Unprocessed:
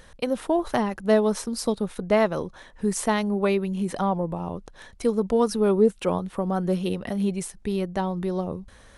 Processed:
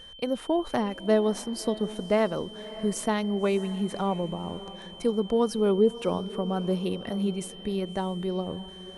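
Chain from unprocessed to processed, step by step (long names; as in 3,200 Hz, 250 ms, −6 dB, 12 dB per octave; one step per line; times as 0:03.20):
parametric band 320 Hz +3 dB 1.8 octaves
feedback delay with all-pass diffusion 595 ms, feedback 44%, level −16 dB
steady tone 3,100 Hz −40 dBFS
level −5 dB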